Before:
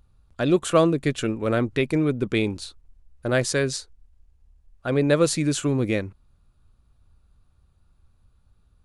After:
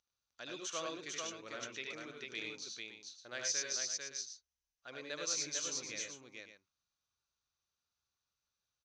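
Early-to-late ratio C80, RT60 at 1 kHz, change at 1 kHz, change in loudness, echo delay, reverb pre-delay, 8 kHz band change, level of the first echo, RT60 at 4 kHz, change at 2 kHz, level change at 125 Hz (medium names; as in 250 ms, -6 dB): no reverb, no reverb, -18.0 dB, -16.5 dB, 75 ms, no reverb, -3.5 dB, -4.0 dB, no reverb, -13.5 dB, -35.5 dB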